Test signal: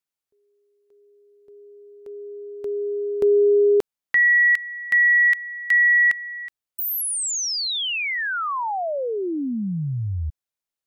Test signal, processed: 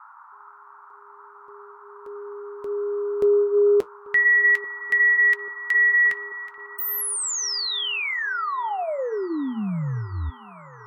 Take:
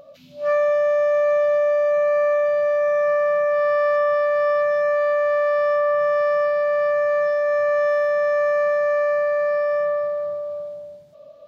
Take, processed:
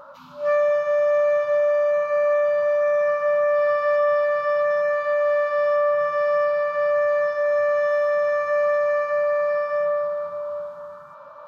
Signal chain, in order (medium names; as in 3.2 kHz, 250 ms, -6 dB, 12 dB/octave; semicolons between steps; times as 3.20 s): flange 0.19 Hz, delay 3.6 ms, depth 7.3 ms, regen -66%; band noise 880–1400 Hz -50 dBFS; feedback echo behind a low-pass 839 ms, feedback 70%, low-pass 2.6 kHz, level -22.5 dB; trim +3 dB